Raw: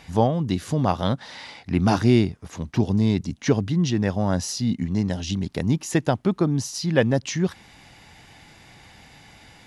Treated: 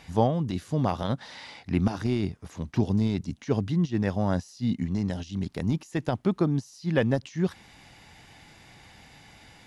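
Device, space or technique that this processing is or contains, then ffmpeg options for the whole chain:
de-esser from a sidechain: -filter_complex "[0:a]asplit=2[link_01][link_02];[link_02]highpass=frequency=5200:width=0.5412,highpass=frequency=5200:width=1.3066,apad=whole_len=426368[link_03];[link_01][link_03]sidechaincompress=threshold=-46dB:ratio=12:attack=2.4:release=47,volume=-3dB"

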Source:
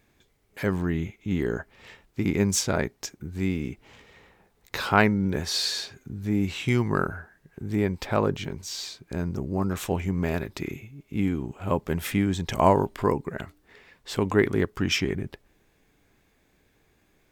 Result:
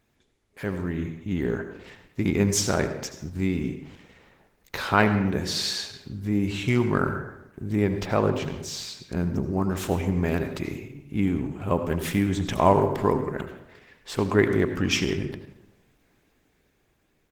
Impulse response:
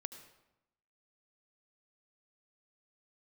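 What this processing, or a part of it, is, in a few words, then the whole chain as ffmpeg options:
speakerphone in a meeting room: -filter_complex "[0:a]asplit=3[link_01][link_02][link_03];[link_01]afade=type=out:start_time=8.75:duration=0.02[link_04];[link_02]adynamicequalizer=threshold=0.00708:dfrequency=200:dqfactor=2.8:tfrequency=200:tqfactor=2.8:attack=5:release=100:ratio=0.375:range=2.5:mode=boostabove:tftype=bell,afade=type=in:start_time=8.75:duration=0.02,afade=type=out:start_time=9.42:duration=0.02[link_05];[link_03]afade=type=in:start_time=9.42:duration=0.02[link_06];[link_04][link_05][link_06]amix=inputs=3:normalize=0[link_07];[1:a]atrim=start_sample=2205[link_08];[link_07][link_08]afir=irnorm=-1:irlink=0,asplit=2[link_09][link_10];[link_10]adelay=110,highpass=300,lowpass=3400,asoftclip=type=hard:threshold=-17dB,volume=-21dB[link_11];[link_09][link_11]amix=inputs=2:normalize=0,dynaudnorm=framelen=310:gausssize=9:maxgain=5dB" -ar 48000 -c:a libopus -b:a 16k

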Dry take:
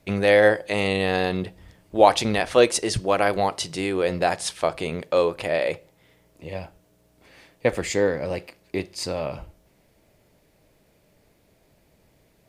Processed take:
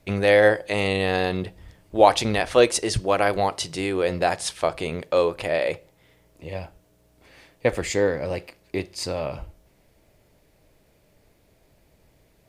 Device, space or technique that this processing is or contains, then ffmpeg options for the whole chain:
low shelf boost with a cut just above: -af "lowshelf=frequency=76:gain=6,equalizer=frequency=190:width_type=o:width=0.77:gain=-2.5"

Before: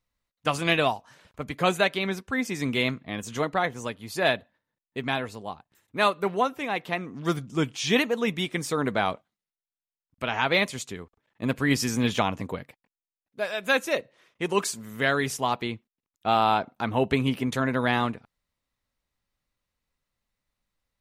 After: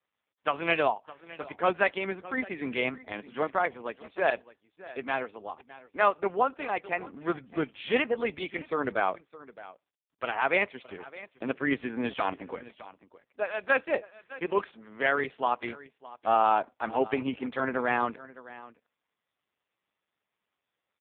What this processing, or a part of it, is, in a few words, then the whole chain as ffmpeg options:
satellite phone: -af "highpass=330,lowpass=3000,aecho=1:1:613:0.119" -ar 8000 -c:a libopencore_amrnb -b:a 4750

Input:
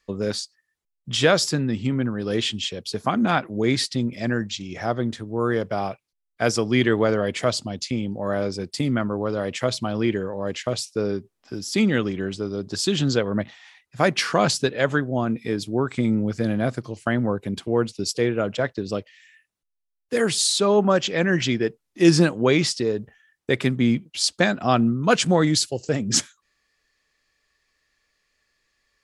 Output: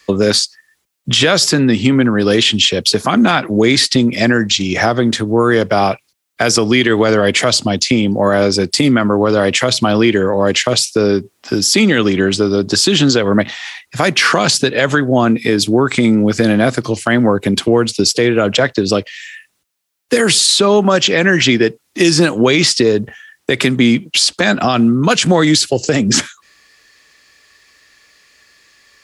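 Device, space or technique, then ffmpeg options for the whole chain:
mastering chain: -filter_complex "[0:a]highpass=54,equalizer=frequency=300:width_type=o:width=1.1:gain=3,acrossover=split=200|2900[link_01][link_02][link_03];[link_01]acompressor=threshold=-31dB:ratio=4[link_04];[link_02]acompressor=threshold=-21dB:ratio=4[link_05];[link_03]acompressor=threshold=-31dB:ratio=4[link_06];[link_04][link_05][link_06]amix=inputs=3:normalize=0,acompressor=threshold=-30dB:ratio=1.5,tiltshelf=frequency=890:gain=-3.5,asoftclip=type=hard:threshold=-14dB,alimiter=level_in=19.5dB:limit=-1dB:release=50:level=0:latency=1,volume=-1dB"

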